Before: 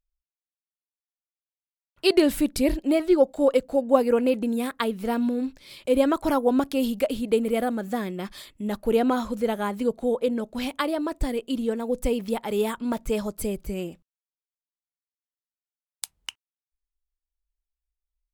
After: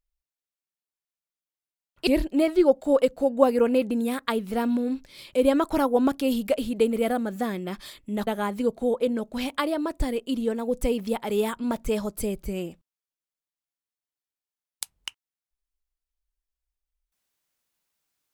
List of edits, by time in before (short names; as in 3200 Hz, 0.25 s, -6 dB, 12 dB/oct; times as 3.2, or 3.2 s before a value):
2.07–2.59 cut
8.79–9.48 cut